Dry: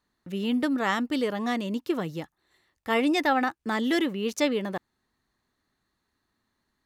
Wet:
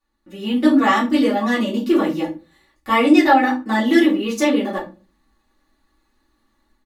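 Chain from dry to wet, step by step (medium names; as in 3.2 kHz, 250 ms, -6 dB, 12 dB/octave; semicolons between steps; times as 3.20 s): comb 3.5 ms, depth 71%; level rider gain up to 9 dB; simulated room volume 140 m³, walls furnished, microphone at 3.4 m; trim -8.5 dB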